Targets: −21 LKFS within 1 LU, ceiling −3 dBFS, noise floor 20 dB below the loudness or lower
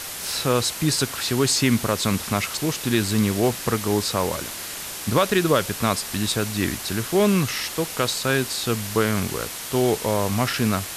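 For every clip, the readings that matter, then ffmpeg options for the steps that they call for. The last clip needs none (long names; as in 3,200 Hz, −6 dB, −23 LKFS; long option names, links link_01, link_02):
background noise floor −33 dBFS; target noise floor −43 dBFS; integrated loudness −22.5 LKFS; sample peak −7.5 dBFS; target loudness −21.0 LKFS
→ -af "afftdn=noise_reduction=10:noise_floor=-33"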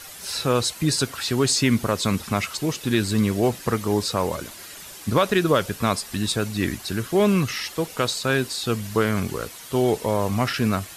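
background noise floor −41 dBFS; target noise floor −43 dBFS
→ -af "afftdn=noise_reduction=6:noise_floor=-41"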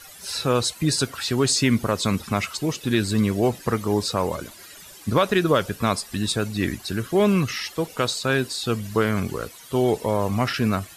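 background noise floor −45 dBFS; integrated loudness −23.5 LKFS; sample peak −8.5 dBFS; target loudness −21.0 LKFS
→ -af "volume=2.5dB"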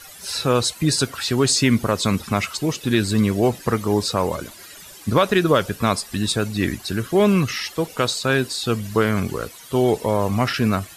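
integrated loudness −21.0 LKFS; sample peak −6.0 dBFS; background noise floor −42 dBFS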